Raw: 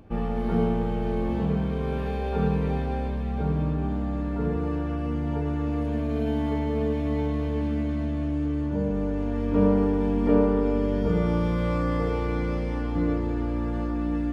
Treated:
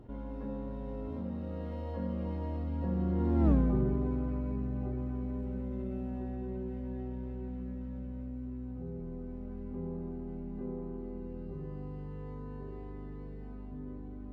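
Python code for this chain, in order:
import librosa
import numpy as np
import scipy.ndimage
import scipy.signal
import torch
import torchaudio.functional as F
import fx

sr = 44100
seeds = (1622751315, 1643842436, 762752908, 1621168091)

y = fx.doppler_pass(x, sr, speed_mps=57, closest_m=3.7, pass_at_s=3.5)
y = fx.tilt_shelf(y, sr, db=5.5, hz=970.0)
y = fx.env_flatten(y, sr, amount_pct=50)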